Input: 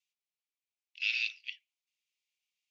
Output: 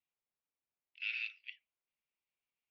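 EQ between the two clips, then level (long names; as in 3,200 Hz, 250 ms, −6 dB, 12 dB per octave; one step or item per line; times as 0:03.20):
low-pass filter 1,500 Hz 12 dB per octave
+3.5 dB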